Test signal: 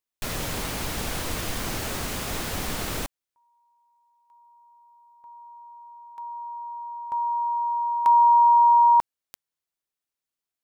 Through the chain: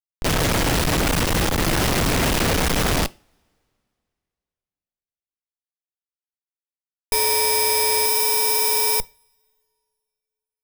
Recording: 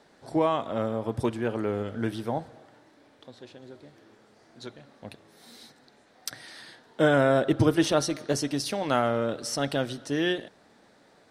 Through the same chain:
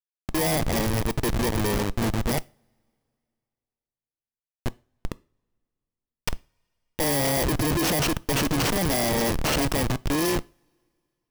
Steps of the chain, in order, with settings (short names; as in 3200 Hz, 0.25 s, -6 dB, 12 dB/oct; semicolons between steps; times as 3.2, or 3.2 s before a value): FFT order left unsorted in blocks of 32 samples; Schmitt trigger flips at -30.5 dBFS; two-slope reverb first 0.32 s, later 2.5 s, from -28 dB, DRR 19 dB; gain +6 dB